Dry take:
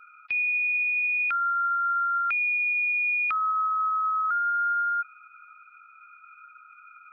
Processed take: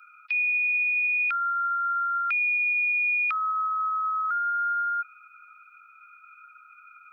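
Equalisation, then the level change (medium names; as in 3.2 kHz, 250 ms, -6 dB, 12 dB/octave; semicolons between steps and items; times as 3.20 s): Chebyshev high-pass 760 Hz, order 5; treble shelf 2.4 kHz +11.5 dB; -4.0 dB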